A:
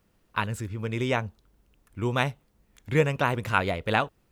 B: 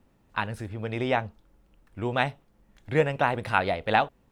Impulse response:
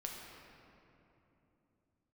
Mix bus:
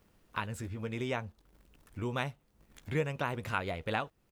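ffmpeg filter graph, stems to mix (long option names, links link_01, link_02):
-filter_complex "[0:a]volume=0.5dB[link_01];[1:a]acompressor=threshold=-33dB:ratio=6,aeval=exprs='val(0)*gte(abs(val(0)),0.00188)':channel_layout=same,adelay=13,volume=-3.5dB[link_02];[link_01][link_02]amix=inputs=2:normalize=0,acompressor=threshold=-47dB:ratio=1.5"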